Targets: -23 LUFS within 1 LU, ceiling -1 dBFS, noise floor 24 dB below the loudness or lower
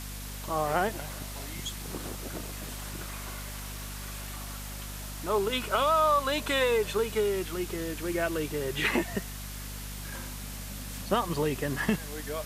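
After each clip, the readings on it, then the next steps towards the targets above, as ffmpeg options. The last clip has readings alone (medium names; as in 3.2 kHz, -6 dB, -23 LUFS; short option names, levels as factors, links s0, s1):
hum 50 Hz; highest harmonic 250 Hz; hum level -38 dBFS; noise floor -39 dBFS; noise floor target -55 dBFS; loudness -31.0 LUFS; peak level -12.0 dBFS; loudness target -23.0 LUFS
-> -af "bandreject=f=50:t=h:w=4,bandreject=f=100:t=h:w=4,bandreject=f=150:t=h:w=4,bandreject=f=200:t=h:w=4,bandreject=f=250:t=h:w=4"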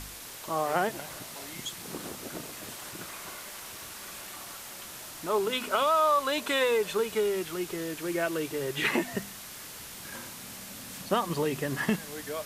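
hum not found; noise floor -44 dBFS; noise floor target -56 dBFS
-> -af "afftdn=nr=12:nf=-44"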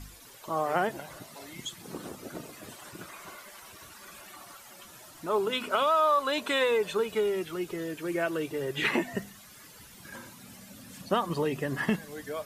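noise floor -51 dBFS; noise floor target -54 dBFS
-> -af "afftdn=nr=6:nf=-51"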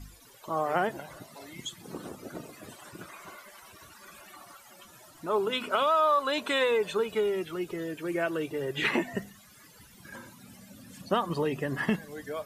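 noise floor -55 dBFS; loudness -29.5 LUFS; peak level -13.5 dBFS; loudness target -23.0 LUFS
-> -af "volume=2.11"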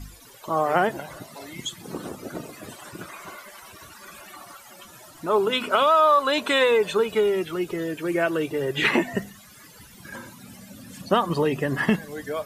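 loudness -23.0 LUFS; peak level -7.0 dBFS; noise floor -48 dBFS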